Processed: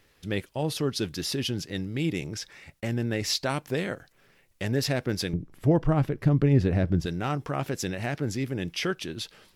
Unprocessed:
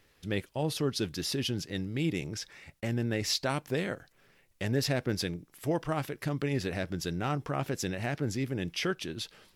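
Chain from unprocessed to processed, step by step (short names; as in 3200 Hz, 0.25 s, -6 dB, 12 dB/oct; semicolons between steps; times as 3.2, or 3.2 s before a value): 5.33–7.06 tilt -3.5 dB/oct; gain +2.5 dB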